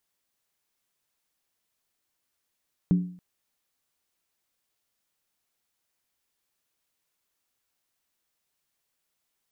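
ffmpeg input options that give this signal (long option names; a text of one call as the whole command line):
ffmpeg -f lavfi -i "aevalsrc='0.178*pow(10,-3*t/0.5)*sin(2*PI*179*t)+0.0501*pow(10,-3*t/0.396)*sin(2*PI*285.3*t)+0.0141*pow(10,-3*t/0.342)*sin(2*PI*382.3*t)+0.00398*pow(10,-3*t/0.33)*sin(2*PI*411*t)+0.00112*pow(10,-3*t/0.307)*sin(2*PI*474.9*t)':duration=0.28:sample_rate=44100" out.wav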